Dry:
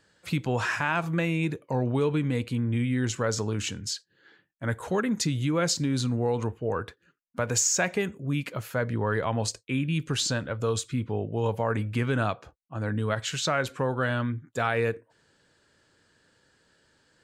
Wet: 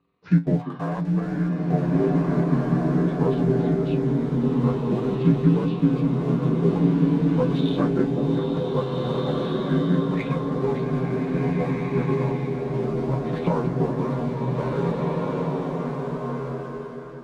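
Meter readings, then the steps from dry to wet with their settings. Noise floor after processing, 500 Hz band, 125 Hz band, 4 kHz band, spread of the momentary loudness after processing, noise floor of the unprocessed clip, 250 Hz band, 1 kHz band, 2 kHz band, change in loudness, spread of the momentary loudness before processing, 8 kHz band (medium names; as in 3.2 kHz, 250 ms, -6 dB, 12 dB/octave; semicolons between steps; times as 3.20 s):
-34 dBFS, +5.0 dB, +6.5 dB, -7.5 dB, 6 LU, -69 dBFS, +9.0 dB, +1.5 dB, -7.0 dB, +4.5 dB, 7 LU, under -25 dB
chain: frequency axis rescaled in octaves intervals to 81%; time-frequency box 10.09–10.36 s, 870–2600 Hz +10 dB; tilt shelf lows +7 dB, about 880 Hz; transient shaper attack +8 dB, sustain -7 dB; random-step tremolo; in parallel at -9.5 dB: small samples zeroed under -27 dBFS; on the sum: distance through air 51 m; feedback comb 56 Hz, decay 0.19 s, harmonics odd, mix 80%; on a send: repeats whose band climbs or falls 190 ms, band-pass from 230 Hz, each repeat 1.4 oct, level -3.5 dB; on the sum: swelling reverb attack 1820 ms, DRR -2.5 dB; trim +2 dB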